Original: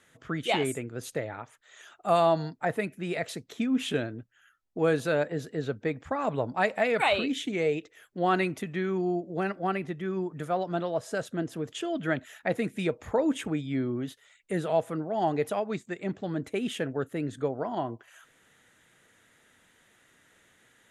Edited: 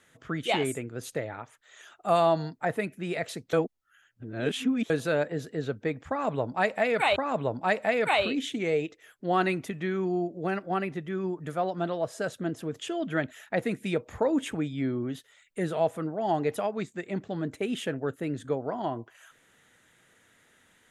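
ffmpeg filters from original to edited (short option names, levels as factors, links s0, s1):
-filter_complex "[0:a]asplit=4[s0][s1][s2][s3];[s0]atrim=end=3.532[s4];[s1]atrim=start=3.528:end=4.902,asetpts=PTS-STARTPTS,areverse[s5];[s2]atrim=start=4.898:end=7.162[s6];[s3]atrim=start=6.088[s7];[s4][s5]acrossfade=d=0.004:c1=hsin:c2=hsin[s8];[s8][s6]acrossfade=d=0.004:c1=hsin:c2=hsin[s9];[s9][s7]acrossfade=d=0.004:c1=hsin:c2=hsin"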